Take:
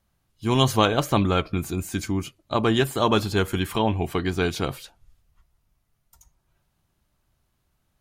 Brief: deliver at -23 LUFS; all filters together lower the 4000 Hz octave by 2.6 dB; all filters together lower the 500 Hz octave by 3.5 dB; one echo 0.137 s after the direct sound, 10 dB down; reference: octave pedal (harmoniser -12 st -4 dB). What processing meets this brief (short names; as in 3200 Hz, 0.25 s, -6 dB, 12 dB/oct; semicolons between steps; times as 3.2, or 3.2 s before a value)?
bell 500 Hz -4.5 dB; bell 4000 Hz -3.5 dB; echo 0.137 s -10 dB; harmoniser -12 st -4 dB; gain +0.5 dB